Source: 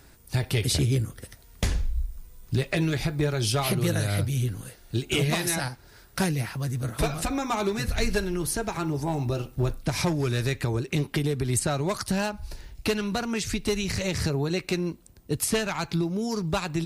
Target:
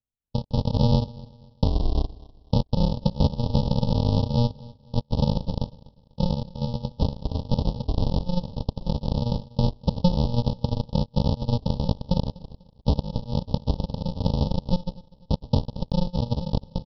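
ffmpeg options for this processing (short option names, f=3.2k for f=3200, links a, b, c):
-af "dynaudnorm=f=170:g=5:m=11dB,aeval=exprs='0.708*(cos(1*acos(clip(val(0)/0.708,-1,1)))-cos(1*PI/2))+0.00447*(cos(3*acos(clip(val(0)/0.708,-1,1)))-cos(3*PI/2))+0.00447*(cos(6*acos(clip(val(0)/0.708,-1,1)))-cos(6*PI/2))+0.1*(cos(7*acos(clip(val(0)/0.708,-1,1)))-cos(7*PI/2))':c=same,alimiter=limit=-11.5dB:level=0:latency=1:release=272,aresample=11025,acrusher=samples=31:mix=1:aa=0.000001,aresample=44100,asuperstop=centerf=1800:order=8:qfactor=0.78,aecho=1:1:247|494|741:0.0841|0.0294|0.0103"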